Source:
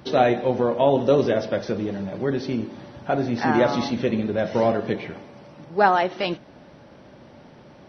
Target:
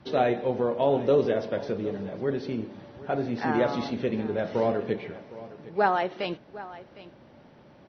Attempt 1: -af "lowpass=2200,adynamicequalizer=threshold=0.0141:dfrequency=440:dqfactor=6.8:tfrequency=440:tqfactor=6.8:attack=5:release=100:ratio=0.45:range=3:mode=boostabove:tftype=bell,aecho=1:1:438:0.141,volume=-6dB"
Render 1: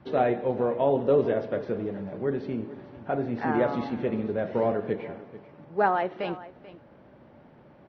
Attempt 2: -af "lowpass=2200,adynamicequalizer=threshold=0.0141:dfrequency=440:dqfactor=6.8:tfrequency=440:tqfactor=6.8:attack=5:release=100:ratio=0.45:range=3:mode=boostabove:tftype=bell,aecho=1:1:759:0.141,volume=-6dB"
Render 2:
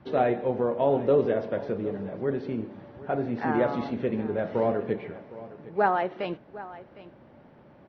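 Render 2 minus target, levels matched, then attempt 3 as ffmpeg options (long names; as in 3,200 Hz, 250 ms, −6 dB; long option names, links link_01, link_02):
4,000 Hz band −7.5 dB
-af "lowpass=4900,adynamicequalizer=threshold=0.0141:dfrequency=440:dqfactor=6.8:tfrequency=440:tqfactor=6.8:attack=5:release=100:ratio=0.45:range=3:mode=boostabove:tftype=bell,aecho=1:1:759:0.141,volume=-6dB"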